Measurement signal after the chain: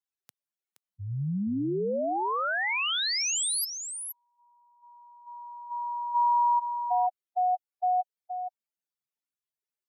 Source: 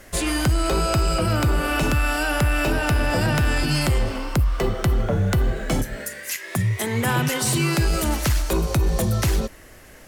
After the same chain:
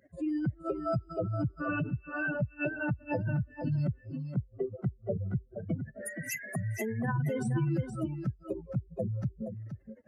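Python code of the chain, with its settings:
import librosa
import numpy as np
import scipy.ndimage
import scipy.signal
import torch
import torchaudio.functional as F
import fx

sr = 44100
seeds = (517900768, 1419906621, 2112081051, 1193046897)

y = fx.spec_expand(x, sr, power=3.4)
y = scipy.signal.sosfilt(scipy.signal.butter(4, 120.0, 'highpass', fs=sr, output='sos'), y)
y = y + 10.0 ** (-8.0 / 20.0) * np.pad(y, (int(472 * sr / 1000.0), 0))[:len(y)]
y = y * librosa.db_to_amplitude(-7.0)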